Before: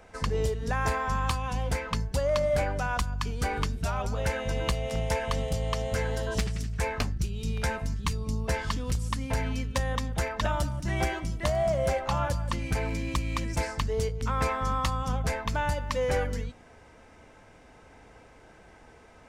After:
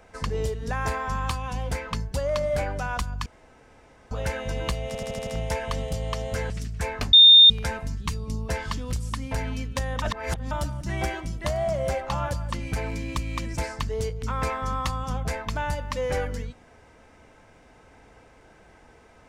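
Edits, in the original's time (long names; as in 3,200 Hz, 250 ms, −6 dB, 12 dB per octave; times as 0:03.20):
0:03.26–0:04.11: fill with room tone
0:04.87: stutter 0.08 s, 6 plays
0:06.10–0:06.49: remove
0:07.12–0:07.49: beep over 3,640 Hz −8 dBFS
0:10.01–0:10.50: reverse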